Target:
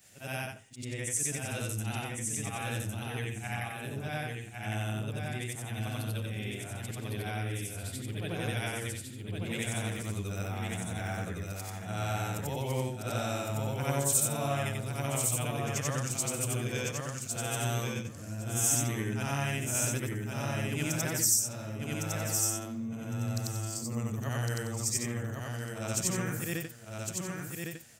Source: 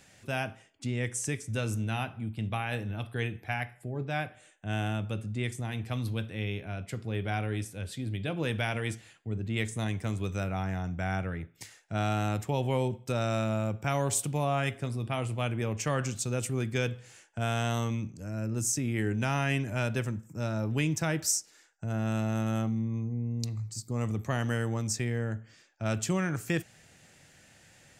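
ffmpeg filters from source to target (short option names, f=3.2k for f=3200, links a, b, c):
-af "afftfilt=real='re':imag='-im':win_size=8192:overlap=0.75,aemphasis=mode=production:type=50fm,aecho=1:1:1107|2214|3321:0.631|0.101|0.0162"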